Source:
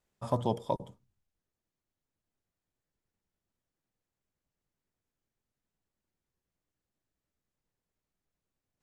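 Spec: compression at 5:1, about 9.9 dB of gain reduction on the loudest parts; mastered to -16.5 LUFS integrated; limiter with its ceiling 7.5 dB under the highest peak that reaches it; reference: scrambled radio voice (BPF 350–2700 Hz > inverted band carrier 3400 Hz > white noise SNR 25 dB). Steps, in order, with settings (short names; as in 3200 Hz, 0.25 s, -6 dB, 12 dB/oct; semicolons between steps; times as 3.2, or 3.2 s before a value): compressor 5:1, threshold -35 dBFS; limiter -29 dBFS; BPF 350–2700 Hz; inverted band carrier 3400 Hz; white noise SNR 25 dB; gain +28.5 dB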